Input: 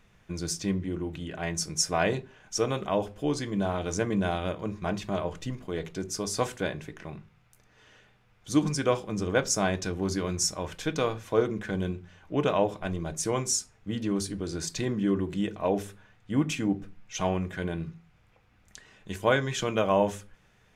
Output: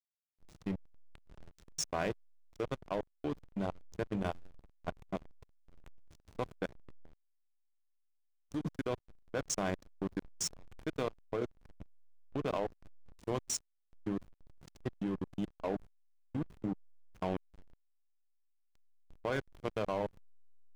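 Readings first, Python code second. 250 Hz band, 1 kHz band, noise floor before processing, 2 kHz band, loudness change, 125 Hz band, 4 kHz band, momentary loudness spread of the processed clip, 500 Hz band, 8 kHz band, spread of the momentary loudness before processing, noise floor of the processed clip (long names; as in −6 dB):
−11.0 dB, −10.5 dB, −63 dBFS, −12.0 dB, −10.0 dB, −11.5 dB, −12.5 dB, 9 LU, −10.5 dB, −11.5 dB, 10 LU, −77 dBFS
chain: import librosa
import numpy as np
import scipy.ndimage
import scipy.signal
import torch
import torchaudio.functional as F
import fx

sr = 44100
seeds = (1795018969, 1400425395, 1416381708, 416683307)

y = fx.level_steps(x, sr, step_db=14)
y = fx.backlash(y, sr, play_db=-28.0)
y = y * librosa.db_to_amplitude(-4.0)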